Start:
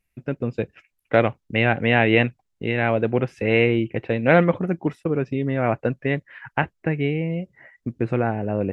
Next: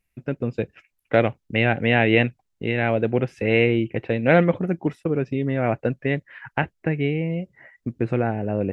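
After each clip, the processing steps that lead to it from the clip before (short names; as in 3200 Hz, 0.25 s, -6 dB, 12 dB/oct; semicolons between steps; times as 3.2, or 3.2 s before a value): dynamic EQ 1100 Hz, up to -5 dB, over -37 dBFS, Q 2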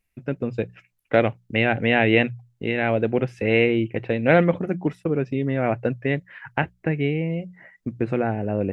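notches 60/120/180 Hz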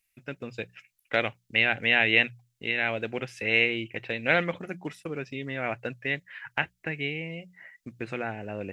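tilt shelf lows -10 dB, about 1300 Hz; gain -3.5 dB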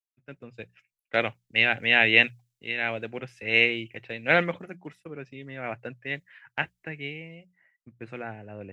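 three-band expander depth 70%; gain -1.5 dB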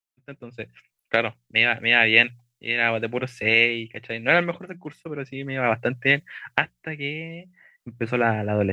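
recorder AGC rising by 7.8 dB/s; gain +2 dB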